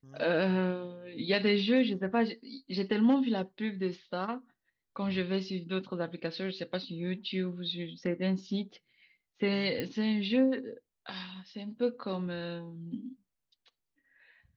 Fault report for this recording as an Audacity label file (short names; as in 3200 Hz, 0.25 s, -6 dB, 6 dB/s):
9.800000	9.800000	pop -20 dBFS